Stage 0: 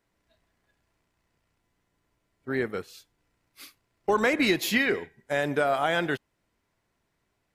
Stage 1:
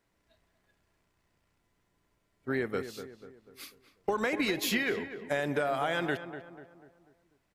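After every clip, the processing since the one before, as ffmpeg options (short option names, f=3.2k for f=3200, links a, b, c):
-filter_complex "[0:a]acompressor=threshold=-26dB:ratio=10,asplit=2[a][b];[b]adelay=245,lowpass=f=1.8k:p=1,volume=-10.5dB,asplit=2[c][d];[d]adelay=245,lowpass=f=1.8k:p=1,volume=0.47,asplit=2[e][f];[f]adelay=245,lowpass=f=1.8k:p=1,volume=0.47,asplit=2[g][h];[h]adelay=245,lowpass=f=1.8k:p=1,volume=0.47,asplit=2[i][j];[j]adelay=245,lowpass=f=1.8k:p=1,volume=0.47[k];[c][e][g][i][k]amix=inputs=5:normalize=0[l];[a][l]amix=inputs=2:normalize=0"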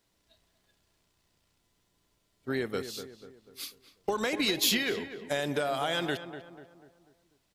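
-af "highshelf=f=2.7k:t=q:w=1.5:g=6.5"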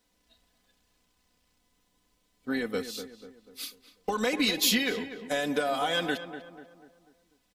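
-af "aecho=1:1:4:0.72"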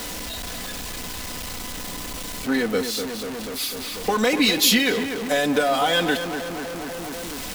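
-af "aeval=exprs='val(0)+0.5*0.0251*sgn(val(0))':c=same,volume=6dB"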